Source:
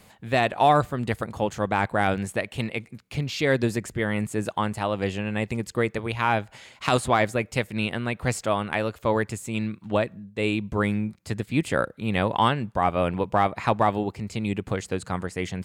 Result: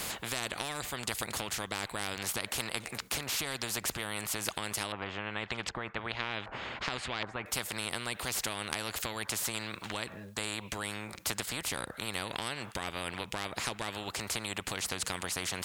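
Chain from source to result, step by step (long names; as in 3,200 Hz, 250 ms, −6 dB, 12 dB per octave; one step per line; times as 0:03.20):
downward compressor, threshold −31 dBFS, peak gain reduction 16 dB
0:04.92–0:07.46: auto-filter low-pass saw up 1.3 Hz 950–3,000 Hz
every bin compressed towards the loudest bin 4 to 1
level +1 dB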